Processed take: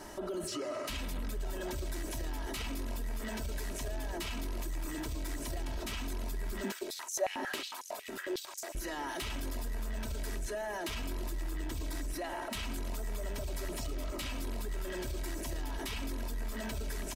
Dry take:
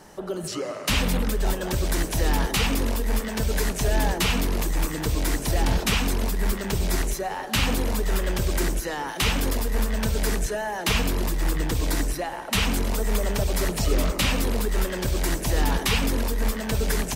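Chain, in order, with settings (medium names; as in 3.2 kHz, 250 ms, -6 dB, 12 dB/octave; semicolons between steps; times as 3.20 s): compression 6:1, threshold -26 dBFS, peak gain reduction 9 dB; comb 3.1 ms, depth 63%; saturation -19 dBFS, distortion -22 dB; peak limiter -31 dBFS, peak gain reduction 11.5 dB; 6.63–8.75 s: step-sequenced high-pass 11 Hz 240–6300 Hz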